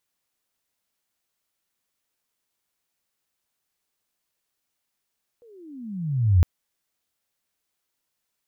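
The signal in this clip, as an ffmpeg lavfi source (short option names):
-f lavfi -i "aevalsrc='pow(10,(-11+38*(t/1.01-1))/20)*sin(2*PI*491*1.01/(-31*log(2)/12)*(exp(-31*log(2)/12*t/1.01)-1))':d=1.01:s=44100"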